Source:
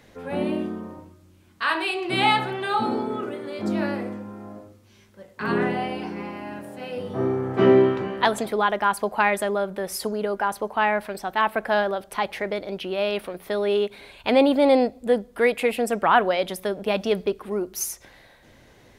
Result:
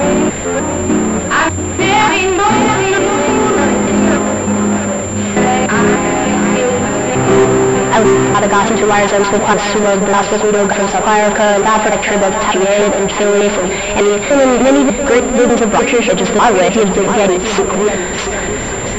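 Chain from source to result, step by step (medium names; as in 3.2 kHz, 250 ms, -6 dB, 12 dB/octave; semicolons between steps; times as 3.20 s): slices played last to first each 298 ms, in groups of 2; power-law waveshaper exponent 0.35; on a send: shuffle delay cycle 1140 ms, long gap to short 1.5:1, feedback 31%, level -8 dB; on the sum: class-D stage that switches slowly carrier 7.3 kHz; trim +2 dB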